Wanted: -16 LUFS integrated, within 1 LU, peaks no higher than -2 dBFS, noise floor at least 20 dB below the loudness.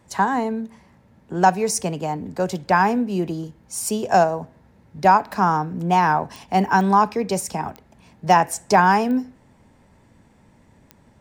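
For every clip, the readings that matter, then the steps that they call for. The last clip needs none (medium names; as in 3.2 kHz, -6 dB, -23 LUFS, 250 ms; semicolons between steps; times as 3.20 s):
clicks found 5; loudness -20.5 LUFS; peak level -3.5 dBFS; loudness target -16.0 LUFS
-> de-click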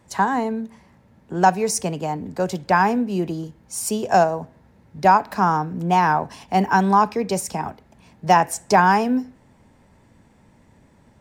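clicks found 0; loudness -20.5 LUFS; peak level -3.5 dBFS; loudness target -16.0 LUFS
-> trim +4.5 dB; peak limiter -2 dBFS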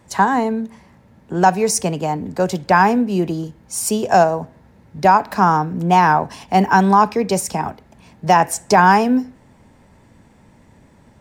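loudness -16.5 LUFS; peak level -2.0 dBFS; noise floor -51 dBFS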